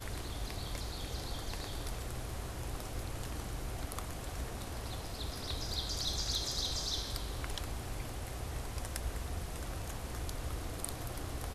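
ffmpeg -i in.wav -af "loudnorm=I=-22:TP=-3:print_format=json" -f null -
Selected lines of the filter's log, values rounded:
"input_i" : "-39.9",
"input_tp" : "-16.4",
"input_lra" : "4.6",
"input_thresh" : "-49.9",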